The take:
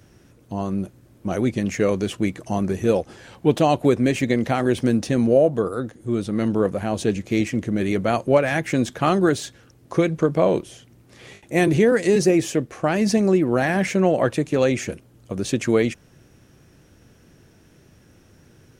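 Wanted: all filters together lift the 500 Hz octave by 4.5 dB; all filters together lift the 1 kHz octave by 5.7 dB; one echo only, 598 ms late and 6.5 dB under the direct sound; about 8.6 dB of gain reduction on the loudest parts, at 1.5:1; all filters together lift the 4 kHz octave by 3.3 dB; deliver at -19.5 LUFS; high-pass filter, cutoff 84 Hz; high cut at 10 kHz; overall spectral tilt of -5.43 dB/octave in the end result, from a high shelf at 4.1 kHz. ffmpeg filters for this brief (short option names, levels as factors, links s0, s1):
-af "highpass=84,lowpass=10000,equalizer=f=500:t=o:g=4,equalizer=f=1000:t=o:g=6.5,equalizer=f=4000:t=o:g=6.5,highshelf=f=4100:g=-4.5,acompressor=threshold=0.0282:ratio=1.5,aecho=1:1:598:0.473,volume=1.78"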